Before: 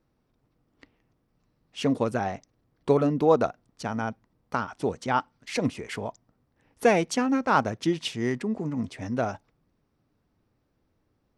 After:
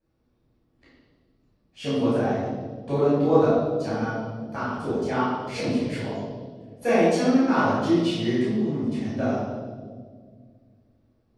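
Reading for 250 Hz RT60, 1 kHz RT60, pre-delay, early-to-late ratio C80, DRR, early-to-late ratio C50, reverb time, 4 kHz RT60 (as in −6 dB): 2.7 s, 1.4 s, 11 ms, 1.0 dB, −11.0 dB, −2.0 dB, 1.8 s, 1.4 s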